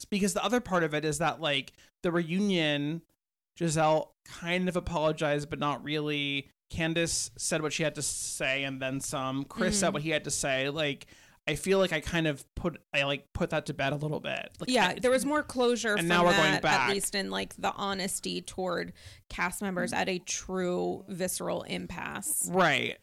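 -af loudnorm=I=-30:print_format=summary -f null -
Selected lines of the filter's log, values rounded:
Input Integrated:    -29.6 LUFS
Input True Peak:     -13.9 dBTP
Input LRA:             5.7 LU
Input Threshold:     -39.8 LUFS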